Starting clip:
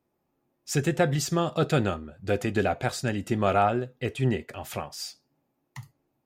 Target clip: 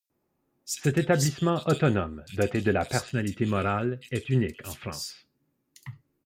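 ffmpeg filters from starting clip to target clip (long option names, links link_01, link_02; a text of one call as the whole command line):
ffmpeg -i in.wav -filter_complex "[0:a]asetnsamples=nb_out_samples=441:pad=0,asendcmd='3.03 equalizer g -13',equalizer=frequency=740:width=1.7:gain=-3.5,acrossover=split=3200[link_01][link_02];[link_01]adelay=100[link_03];[link_03][link_02]amix=inputs=2:normalize=0,volume=1.5dB" out.wav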